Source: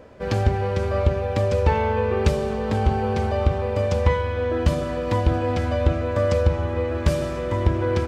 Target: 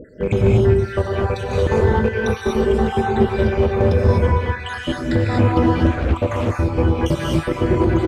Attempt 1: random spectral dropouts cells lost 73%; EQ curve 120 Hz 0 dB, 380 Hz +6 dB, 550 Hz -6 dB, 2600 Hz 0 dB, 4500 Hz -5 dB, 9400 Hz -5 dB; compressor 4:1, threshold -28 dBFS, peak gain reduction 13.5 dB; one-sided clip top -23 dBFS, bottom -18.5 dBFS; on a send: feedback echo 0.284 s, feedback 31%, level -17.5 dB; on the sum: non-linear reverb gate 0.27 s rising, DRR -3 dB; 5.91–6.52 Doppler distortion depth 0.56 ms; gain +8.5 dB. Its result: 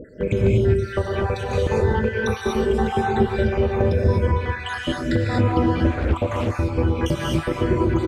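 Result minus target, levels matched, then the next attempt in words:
compressor: peak gain reduction +5 dB
random spectral dropouts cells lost 73%; EQ curve 120 Hz 0 dB, 380 Hz +6 dB, 550 Hz -6 dB, 2600 Hz 0 dB, 4500 Hz -5 dB, 9400 Hz -5 dB; compressor 4:1, threshold -21.5 dBFS, peak gain reduction 8.5 dB; one-sided clip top -23 dBFS, bottom -18.5 dBFS; on a send: feedback echo 0.284 s, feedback 31%, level -17.5 dB; on the sum: non-linear reverb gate 0.27 s rising, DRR -3 dB; 5.91–6.52 Doppler distortion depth 0.56 ms; gain +8.5 dB

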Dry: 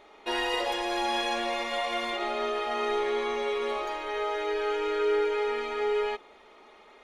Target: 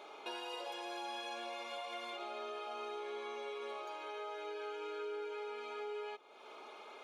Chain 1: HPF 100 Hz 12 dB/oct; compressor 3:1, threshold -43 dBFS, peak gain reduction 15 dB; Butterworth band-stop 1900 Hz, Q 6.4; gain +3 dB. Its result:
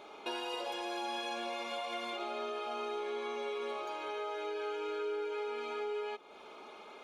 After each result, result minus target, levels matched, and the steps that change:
125 Hz band +7.5 dB; compressor: peak gain reduction -4 dB
change: HPF 340 Hz 12 dB/oct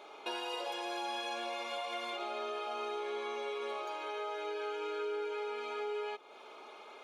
compressor: peak gain reduction -5 dB
change: compressor 3:1, threshold -50.5 dBFS, peak gain reduction 18.5 dB

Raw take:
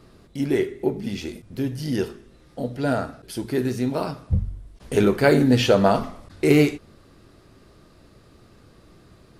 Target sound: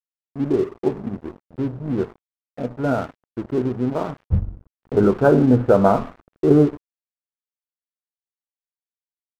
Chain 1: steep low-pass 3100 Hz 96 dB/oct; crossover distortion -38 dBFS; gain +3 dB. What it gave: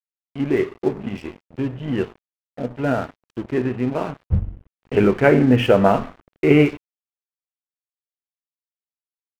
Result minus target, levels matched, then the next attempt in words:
4000 Hz band +11.5 dB
steep low-pass 1500 Hz 96 dB/oct; crossover distortion -38 dBFS; gain +3 dB

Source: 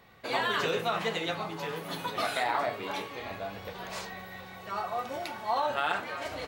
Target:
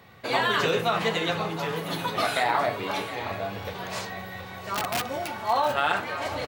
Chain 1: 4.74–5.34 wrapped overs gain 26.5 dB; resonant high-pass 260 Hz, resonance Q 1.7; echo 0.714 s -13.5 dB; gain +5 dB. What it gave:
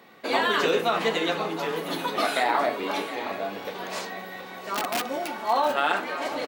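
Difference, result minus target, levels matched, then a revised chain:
125 Hz band -9.0 dB
4.74–5.34 wrapped overs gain 26.5 dB; resonant high-pass 91 Hz, resonance Q 1.7; echo 0.714 s -13.5 dB; gain +5 dB

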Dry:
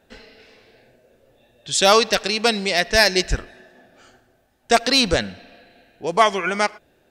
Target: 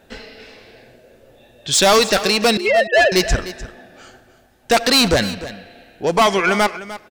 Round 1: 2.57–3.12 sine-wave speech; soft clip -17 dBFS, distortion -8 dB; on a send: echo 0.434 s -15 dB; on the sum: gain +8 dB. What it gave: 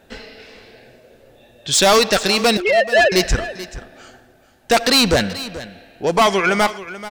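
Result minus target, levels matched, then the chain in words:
echo 0.133 s late
2.57–3.12 sine-wave speech; soft clip -17 dBFS, distortion -8 dB; on a send: echo 0.301 s -15 dB; on the sum: gain +8 dB

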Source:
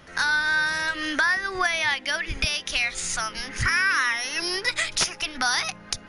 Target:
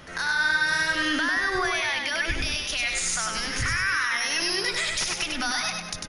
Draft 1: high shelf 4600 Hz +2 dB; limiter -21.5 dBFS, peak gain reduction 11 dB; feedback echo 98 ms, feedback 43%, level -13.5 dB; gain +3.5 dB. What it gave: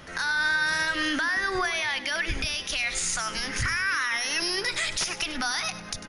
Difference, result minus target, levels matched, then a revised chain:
echo-to-direct -10 dB
high shelf 4600 Hz +2 dB; limiter -21.5 dBFS, peak gain reduction 11 dB; feedback echo 98 ms, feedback 43%, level -3.5 dB; gain +3.5 dB

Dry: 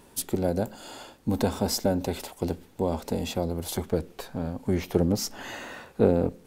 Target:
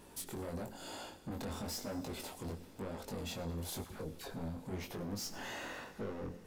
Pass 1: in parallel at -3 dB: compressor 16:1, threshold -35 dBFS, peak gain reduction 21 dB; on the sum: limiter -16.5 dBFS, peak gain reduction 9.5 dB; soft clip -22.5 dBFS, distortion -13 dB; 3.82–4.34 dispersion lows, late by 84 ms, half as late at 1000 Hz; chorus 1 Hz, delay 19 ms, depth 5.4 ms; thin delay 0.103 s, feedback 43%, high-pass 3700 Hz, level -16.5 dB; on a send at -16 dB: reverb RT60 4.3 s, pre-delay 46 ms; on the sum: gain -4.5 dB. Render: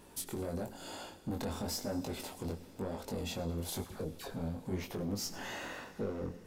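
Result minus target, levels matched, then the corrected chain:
soft clip: distortion -7 dB
in parallel at -3 dB: compressor 16:1, threshold -35 dBFS, peak gain reduction 21 dB; on the sum: limiter -16.5 dBFS, peak gain reduction 9.5 dB; soft clip -30 dBFS, distortion -7 dB; 3.82–4.34 dispersion lows, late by 84 ms, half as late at 1000 Hz; chorus 1 Hz, delay 19 ms, depth 5.4 ms; thin delay 0.103 s, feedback 43%, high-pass 3700 Hz, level -16.5 dB; on a send at -16 dB: reverb RT60 4.3 s, pre-delay 46 ms; on the sum: gain -4.5 dB

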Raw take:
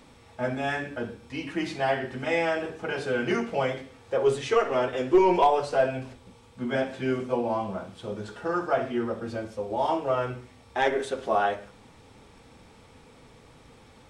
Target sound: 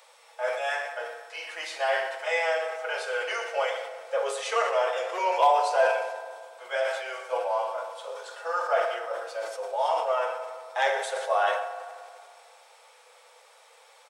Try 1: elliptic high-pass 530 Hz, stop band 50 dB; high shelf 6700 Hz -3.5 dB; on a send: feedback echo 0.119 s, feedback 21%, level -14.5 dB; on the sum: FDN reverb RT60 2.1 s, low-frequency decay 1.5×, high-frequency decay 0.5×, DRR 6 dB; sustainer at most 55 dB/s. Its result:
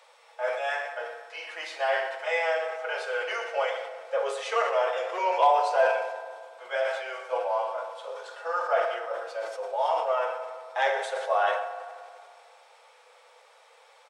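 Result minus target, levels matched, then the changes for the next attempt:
8000 Hz band -5.5 dB
change: high shelf 6700 Hz +8 dB

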